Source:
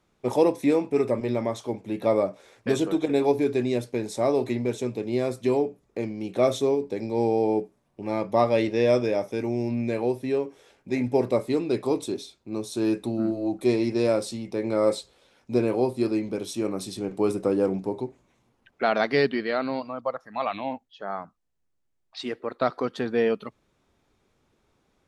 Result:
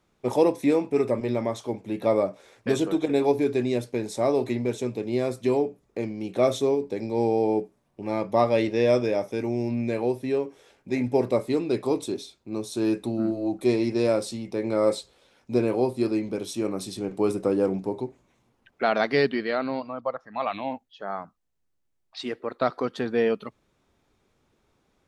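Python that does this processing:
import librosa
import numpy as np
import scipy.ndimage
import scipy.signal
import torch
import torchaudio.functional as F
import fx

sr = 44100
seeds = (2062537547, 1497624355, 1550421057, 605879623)

y = fx.air_absorb(x, sr, metres=86.0, at=(19.55, 20.47))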